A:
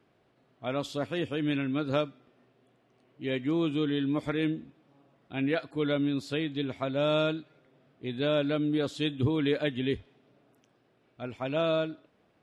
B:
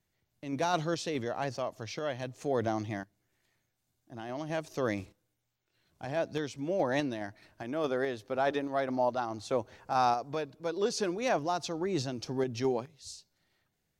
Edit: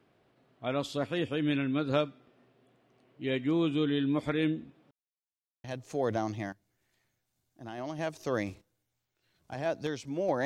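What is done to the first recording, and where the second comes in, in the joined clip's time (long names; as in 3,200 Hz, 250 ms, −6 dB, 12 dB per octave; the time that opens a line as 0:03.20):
A
0:04.91–0:05.64: silence
0:05.64: continue with B from 0:02.15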